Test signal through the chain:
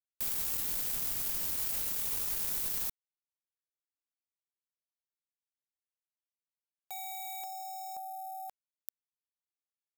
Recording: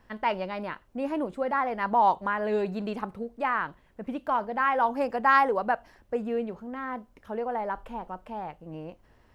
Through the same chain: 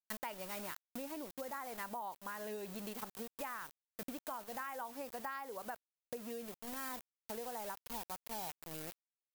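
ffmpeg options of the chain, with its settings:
-af "aeval=exprs='val(0)*gte(abs(val(0)),0.0133)':c=same,acompressor=threshold=0.0178:ratio=10,aemphasis=mode=production:type=75fm,volume=0.501"

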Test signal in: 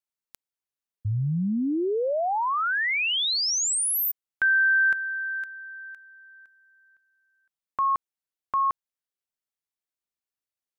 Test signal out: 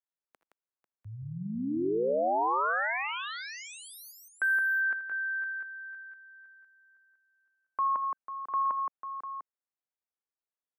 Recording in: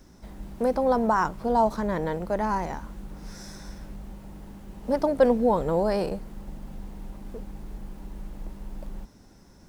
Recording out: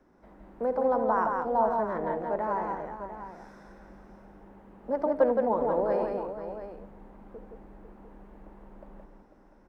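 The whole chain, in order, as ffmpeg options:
-filter_complex "[0:a]acrossover=split=260 2000:gain=0.2 1 0.0794[s0][s1][s2];[s0][s1][s2]amix=inputs=3:normalize=0,aecho=1:1:64|76|82|169|495|698:0.119|0.126|0.158|0.631|0.282|0.266,volume=0.668"

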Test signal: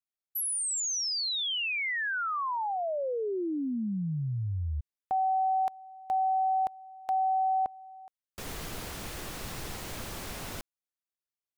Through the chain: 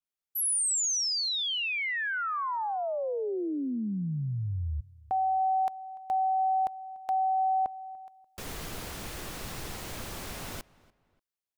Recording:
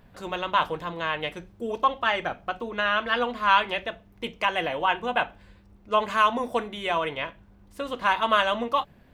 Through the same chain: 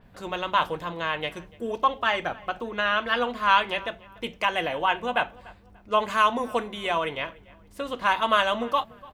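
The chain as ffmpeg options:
-filter_complex "[0:a]asplit=2[s0][s1];[s1]adelay=292,lowpass=f=2900:p=1,volume=0.0794,asplit=2[s2][s3];[s3]adelay=292,lowpass=f=2900:p=1,volume=0.34[s4];[s0][s2][s4]amix=inputs=3:normalize=0,adynamicequalizer=threshold=0.0112:dfrequency=5300:dqfactor=0.7:tfrequency=5300:tqfactor=0.7:attack=5:release=100:ratio=0.375:range=2:mode=boostabove:tftype=highshelf"

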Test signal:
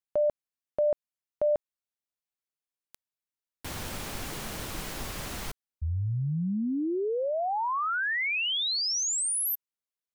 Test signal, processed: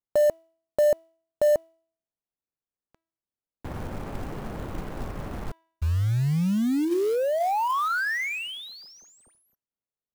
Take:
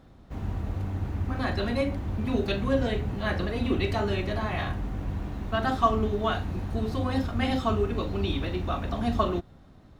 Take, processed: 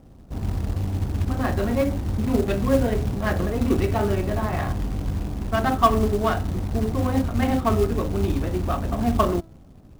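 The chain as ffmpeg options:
-af "adynamicsmooth=sensitivity=1.5:basefreq=920,bandreject=f=327.2:t=h:w=4,bandreject=f=654.4:t=h:w=4,bandreject=f=981.6:t=h:w=4,bandreject=f=1308.8:t=h:w=4,bandreject=f=1636:t=h:w=4,bandreject=f=1963.2:t=h:w=4,bandreject=f=2290.4:t=h:w=4,bandreject=f=2617.6:t=h:w=4,bandreject=f=2944.8:t=h:w=4,bandreject=f=3272:t=h:w=4,bandreject=f=3599.2:t=h:w=4,bandreject=f=3926.4:t=h:w=4,bandreject=f=4253.6:t=h:w=4,bandreject=f=4580.8:t=h:w=4,bandreject=f=4908:t=h:w=4,bandreject=f=5235.2:t=h:w=4,bandreject=f=5562.4:t=h:w=4,bandreject=f=5889.6:t=h:w=4,bandreject=f=6216.8:t=h:w=4,bandreject=f=6544:t=h:w=4,bandreject=f=6871.2:t=h:w=4,bandreject=f=7198.4:t=h:w=4,acrusher=bits=5:mode=log:mix=0:aa=0.000001,volume=1.88"

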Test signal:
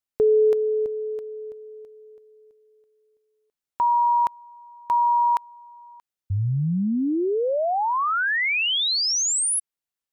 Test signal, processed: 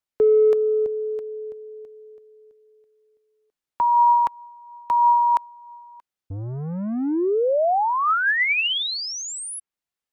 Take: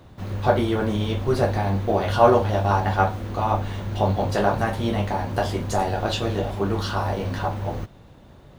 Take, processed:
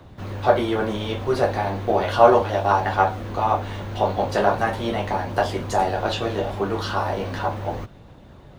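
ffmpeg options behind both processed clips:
-filter_complex "[0:a]highshelf=f=6300:g=-6,acrossover=split=300|760|3100[s0][s1][s2][s3];[s0]asoftclip=type=tanh:threshold=0.0251[s4];[s2]aphaser=in_gain=1:out_gain=1:delay=4.3:decay=0.31:speed=0.37:type=triangular[s5];[s3]acompressor=threshold=0.02:ratio=6:release=318[s6];[s4][s1][s5][s6]amix=inputs=4:normalize=0,volume=1.33"

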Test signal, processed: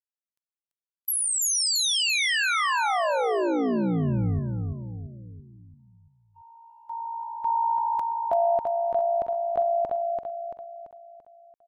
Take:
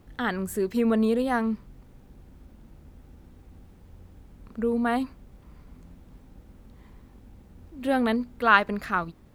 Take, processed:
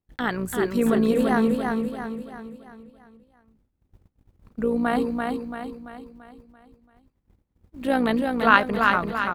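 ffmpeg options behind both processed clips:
-af "agate=range=0.0251:threshold=0.00631:ratio=16:detection=peak,tremolo=f=58:d=0.519,aecho=1:1:338|676|1014|1352|1690|2028:0.631|0.297|0.139|0.0655|0.0308|0.0145,volume=1.58"

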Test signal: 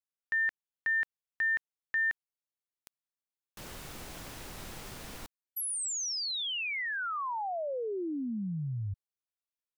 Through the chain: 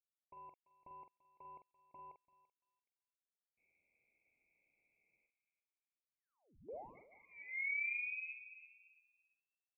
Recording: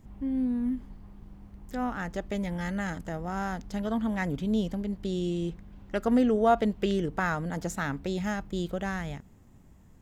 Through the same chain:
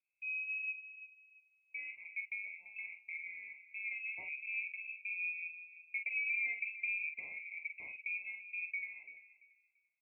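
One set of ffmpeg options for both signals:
-filter_complex "[0:a]agate=range=0.355:threshold=0.0112:ratio=16:release=86:detection=peak,highpass=550,aemphasis=mode=reproduction:type=75kf,afwtdn=0.02,equalizer=f=2100:t=o:w=0.45:g=-6.5,acompressor=threshold=0.0158:ratio=3:attack=11:release=224:knee=6:detection=peak,asoftclip=type=tanh:threshold=0.0473,asuperstop=centerf=1200:order=12:qfactor=0.8,asplit=2[s0][s1];[s1]adelay=45,volume=0.447[s2];[s0][s2]amix=inputs=2:normalize=0,asplit=2[s3][s4];[s4]adelay=339,lowpass=f=980:p=1,volume=0.237,asplit=2[s5][s6];[s6]adelay=339,lowpass=f=980:p=1,volume=0.28,asplit=2[s7][s8];[s8]adelay=339,lowpass=f=980:p=1,volume=0.28[s9];[s3][s5][s7][s9]amix=inputs=4:normalize=0,lowpass=f=2400:t=q:w=0.5098,lowpass=f=2400:t=q:w=0.6013,lowpass=f=2400:t=q:w=0.9,lowpass=f=2400:t=q:w=2.563,afreqshift=-2800,volume=1.19"

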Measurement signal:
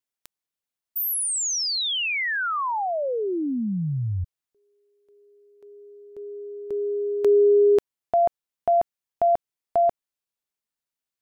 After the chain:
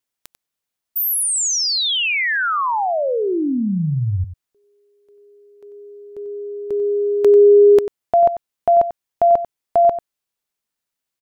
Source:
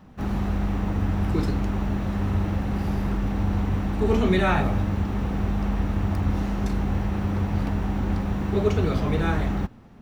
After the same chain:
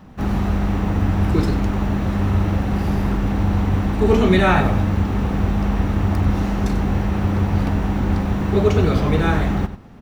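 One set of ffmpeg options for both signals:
-filter_complex "[0:a]asplit=2[s0][s1];[s1]adelay=93.29,volume=0.251,highshelf=f=4000:g=-2.1[s2];[s0][s2]amix=inputs=2:normalize=0,volume=2"

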